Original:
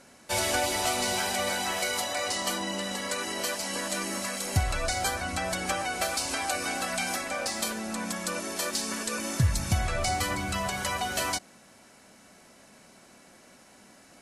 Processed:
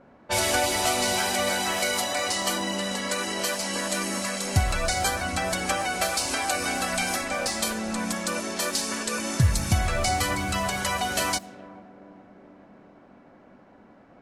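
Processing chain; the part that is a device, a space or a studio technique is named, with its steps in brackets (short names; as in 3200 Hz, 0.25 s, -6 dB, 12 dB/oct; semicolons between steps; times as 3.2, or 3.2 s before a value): 6.6–8.14 low shelf 74 Hz +10.5 dB; narrowing echo 0.42 s, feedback 77%, band-pass 310 Hz, level -14 dB; cassette deck with a dynamic noise filter (white noise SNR 28 dB; low-pass opened by the level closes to 960 Hz, open at -27.5 dBFS); gain +3.5 dB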